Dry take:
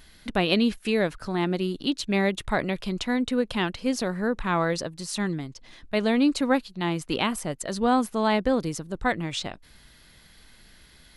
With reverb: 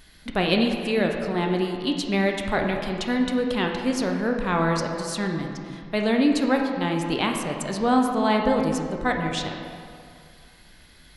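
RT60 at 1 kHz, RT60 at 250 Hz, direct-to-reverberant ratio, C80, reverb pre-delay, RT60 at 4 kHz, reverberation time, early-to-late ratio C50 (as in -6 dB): 2.3 s, 2.2 s, 2.0 dB, 5.0 dB, 11 ms, 1.5 s, 2.3 s, 4.0 dB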